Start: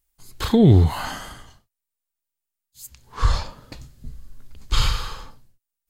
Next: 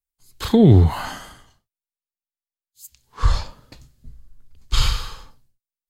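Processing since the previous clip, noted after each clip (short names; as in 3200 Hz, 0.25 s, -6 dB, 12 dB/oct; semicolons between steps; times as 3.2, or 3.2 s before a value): three-band expander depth 40%; gain -1.5 dB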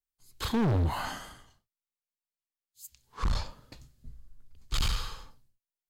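hard clip -18.5 dBFS, distortion -5 dB; gain -5.5 dB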